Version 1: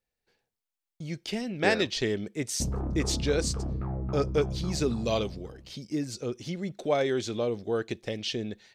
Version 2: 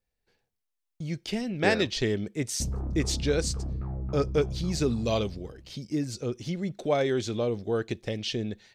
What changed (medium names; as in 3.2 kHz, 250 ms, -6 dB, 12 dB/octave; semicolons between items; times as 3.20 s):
background -6.0 dB; master: add bass shelf 130 Hz +8.5 dB